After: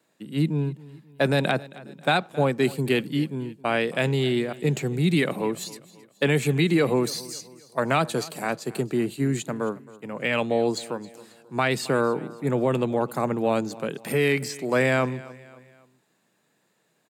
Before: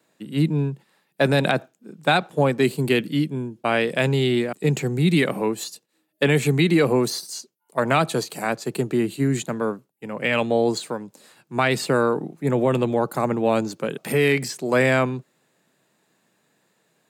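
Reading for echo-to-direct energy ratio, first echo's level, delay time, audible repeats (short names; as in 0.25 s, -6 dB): -19.0 dB, -20.0 dB, 0.269 s, 3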